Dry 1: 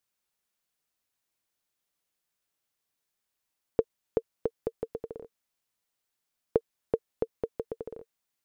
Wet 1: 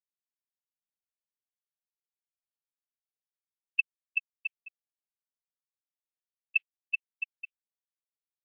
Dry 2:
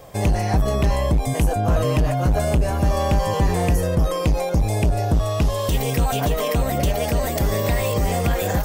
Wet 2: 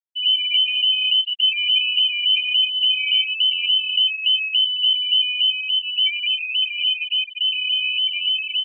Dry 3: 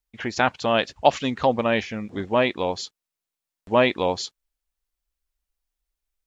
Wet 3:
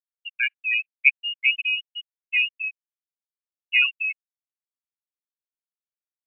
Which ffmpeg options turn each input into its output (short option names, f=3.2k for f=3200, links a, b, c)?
-af "lowpass=f=2.6k:t=q:w=0.5098,lowpass=f=2.6k:t=q:w=0.6013,lowpass=f=2.6k:t=q:w=0.9,lowpass=f=2.6k:t=q:w=2.563,afreqshift=-3100,aecho=1:1:202:0.178,afftfilt=real='re*gte(hypot(re,im),0.447)':imag='im*gte(hypot(re,im),0.447)':win_size=1024:overlap=0.75" -ar 22050 -c:a aac -b:a 24k